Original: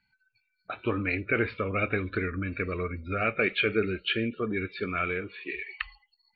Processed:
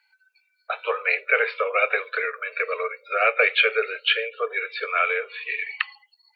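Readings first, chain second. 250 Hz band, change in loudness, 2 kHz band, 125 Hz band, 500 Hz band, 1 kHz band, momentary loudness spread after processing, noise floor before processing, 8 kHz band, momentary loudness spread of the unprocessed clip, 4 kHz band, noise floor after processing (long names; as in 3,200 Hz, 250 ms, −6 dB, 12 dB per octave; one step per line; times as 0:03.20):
below −20 dB, +6.5 dB, +8.5 dB, below −40 dB, +5.0 dB, +8.5 dB, 10 LU, −77 dBFS, can't be measured, 10 LU, +8.5 dB, −69 dBFS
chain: Butterworth high-pass 450 Hz 96 dB per octave
level +8.5 dB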